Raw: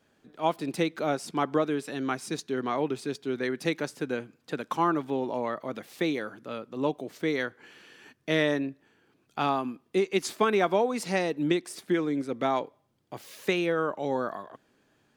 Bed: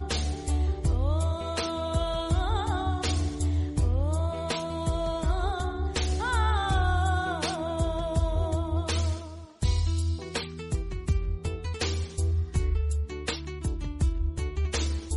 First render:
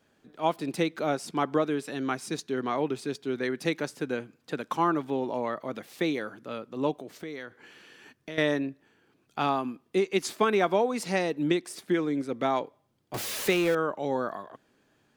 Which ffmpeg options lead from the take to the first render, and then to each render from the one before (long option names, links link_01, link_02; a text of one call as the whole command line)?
ffmpeg -i in.wav -filter_complex "[0:a]asettb=1/sr,asplit=3[link_01][link_02][link_03];[link_01]atrim=end=6.934[link_04];[link_02]atrim=start=6.93:end=8.38,asetpts=PTS-STARTPTS,afade=type=in:duration=0.004:curve=qsin,afade=type=out:start_time=1.446:duration=0.004:curve=qsin,acompressor=threshold=-36dB:ratio=4:attack=3.2:release=140:knee=1:detection=peak[link_05];[link_03]atrim=start=8.376[link_06];[link_04][link_05]acrossfade=duration=0.004:curve1=hsin:curve2=qsin[link_07];[link_07][link_06]acrossfade=duration=0.004:curve1=qsin:curve2=hsin,asettb=1/sr,asplit=3[link_08][link_09][link_10];[link_08]atrim=end=13.144[link_11];[link_09]atrim=start=13.14:end=13.75,asetpts=PTS-STARTPTS,afade=type=in:duration=0.004:curve=qsin,afade=type=out:start_time=0.606:duration=0.004:curve=qsin,aeval=exprs='val(0)+0.5*0.0335*sgn(val(0))':channel_layout=same[link_12];[link_10]atrim=start=13.746[link_13];[link_11][link_12]acrossfade=duration=0.004:curve1=hsin:curve2=qsin[link_14];[link_14][link_13]acrossfade=duration=0.004:curve1=qsin:curve2=hsin" out.wav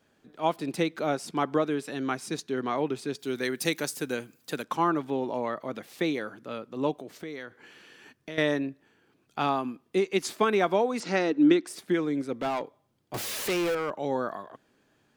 ffmpeg -i in.wav -filter_complex "[0:a]asplit=3[link_01][link_02][link_03];[link_01]afade=type=out:start_time=3.18:duration=0.02[link_04];[link_02]aemphasis=mode=production:type=75fm,afade=type=in:start_time=3.18:duration=0.02,afade=type=out:start_time=4.62:duration=0.02[link_05];[link_03]afade=type=in:start_time=4.62:duration=0.02[link_06];[link_04][link_05][link_06]amix=inputs=3:normalize=0,asettb=1/sr,asplit=3[link_07][link_08][link_09];[link_07]atrim=end=11.004[link_10];[link_08]atrim=start=11:end=11.67,asetpts=PTS-STARTPTS,afade=type=in:duration=0.004:curve=qsin,afade=type=out:start_time=0.666:duration=0.004:curve=qsin,highpass=130,equalizer=frequency=140:width_type=q:width=4:gain=-6,equalizer=frequency=300:width_type=q:width=4:gain=10,equalizer=frequency=1400:width_type=q:width=4:gain=8,lowpass=frequency=7000:width=0.5412,lowpass=frequency=7000:width=1.3066[link_11];[link_09]atrim=start=11.666[link_12];[link_10][link_11]acrossfade=duration=0.004:curve1=hsin:curve2=qsin[link_13];[link_13][link_12]acrossfade=duration=0.004:curve1=qsin:curve2=hsin,asettb=1/sr,asplit=3[link_14][link_15][link_16];[link_14]atrim=end=12.334[link_17];[link_15]atrim=start=12.33:end=13.91,asetpts=PTS-STARTPTS,afade=type=in:duration=0.004:curve=qsin,afade=type=out:start_time=1.576:duration=0.004:curve=qsin,volume=24.5dB,asoftclip=hard,volume=-24.5dB[link_18];[link_16]atrim=start=13.906[link_19];[link_17][link_18]acrossfade=duration=0.004:curve1=hsin:curve2=qsin[link_20];[link_20][link_19]acrossfade=duration=0.004:curve1=qsin:curve2=hsin" out.wav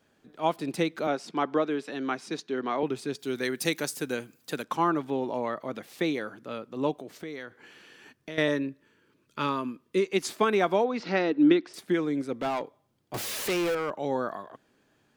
ffmpeg -i in.wav -filter_complex "[0:a]asettb=1/sr,asplit=3[link_01][link_02][link_03];[link_01]atrim=end=1.074[link_04];[link_02]atrim=start=1.07:end=2.83,asetpts=PTS-STARTPTS,afade=type=in:duration=0.004:curve=qsin,afade=type=out:start_time=1.756:duration=0.004:curve=qsin,acrossover=split=170 6200:gain=0.178 1 0.2[link_05][link_06][link_07];[link_05][link_06][link_07]amix=inputs=3:normalize=0[link_08];[link_03]atrim=start=2.826[link_09];[link_04][link_08]acrossfade=duration=0.004:curve1=hsin:curve2=qsin[link_10];[link_10][link_09]acrossfade=duration=0.004:curve1=qsin:curve2=hsin,asettb=1/sr,asplit=3[link_11][link_12][link_13];[link_11]atrim=end=8.484[link_14];[link_12]atrim=start=8.48:end=10.05,asetpts=PTS-STARTPTS,afade=type=in:duration=0.004:curve=qsin,afade=type=out:start_time=1.566:duration=0.004:curve=qsin,asuperstop=centerf=750:order=8:qfactor=3.5[link_15];[link_13]atrim=start=10.046[link_16];[link_14][link_15]acrossfade=duration=0.004:curve1=hsin:curve2=qsin[link_17];[link_17][link_16]acrossfade=duration=0.004:curve1=qsin:curve2=hsin,asettb=1/sr,asplit=3[link_18][link_19][link_20];[link_18]atrim=end=10.844[link_21];[link_19]atrim=start=10.84:end=11.74,asetpts=PTS-STARTPTS,afade=type=in:duration=0.004:curve=qsin,afade=type=out:start_time=0.896:duration=0.004:curve=qsin,lowpass=frequency=4800:width=0.5412,lowpass=frequency=4800:width=1.3066[link_22];[link_20]atrim=start=11.736[link_23];[link_21][link_22]acrossfade=duration=0.004:curve1=hsin:curve2=qsin[link_24];[link_24][link_23]acrossfade=duration=0.004:curve1=qsin:curve2=hsin" out.wav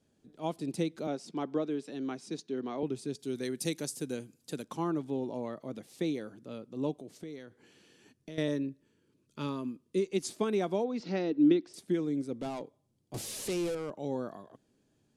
ffmpeg -i in.wav -af "lowpass=frequency=11000:width=0.5412,lowpass=frequency=11000:width=1.3066,equalizer=frequency=1500:width_type=o:width=2.8:gain=-15" out.wav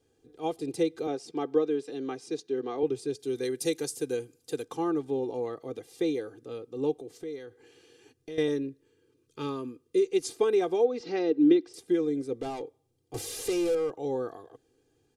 ffmpeg -i in.wav -af "equalizer=frequency=480:width_type=o:width=0.27:gain=7.5,aecho=1:1:2.5:0.8" out.wav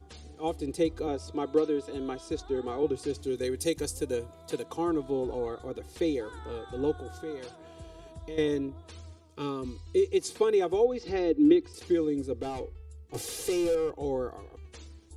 ffmpeg -i in.wav -i bed.wav -filter_complex "[1:a]volume=-19.5dB[link_01];[0:a][link_01]amix=inputs=2:normalize=0" out.wav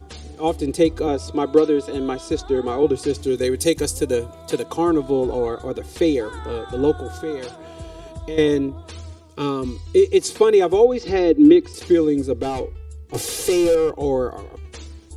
ffmpeg -i in.wav -af "volume=10.5dB,alimiter=limit=-2dB:level=0:latency=1" out.wav